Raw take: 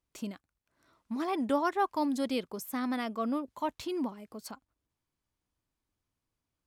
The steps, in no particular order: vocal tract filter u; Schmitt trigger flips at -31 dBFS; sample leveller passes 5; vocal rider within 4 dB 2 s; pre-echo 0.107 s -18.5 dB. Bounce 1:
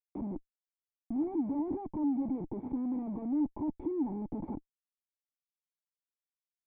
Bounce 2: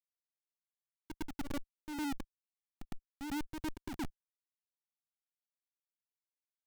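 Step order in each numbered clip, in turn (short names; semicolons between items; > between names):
vocal rider > sample leveller > pre-echo > Schmitt trigger > vocal tract filter; vocal rider > vocal tract filter > Schmitt trigger > pre-echo > sample leveller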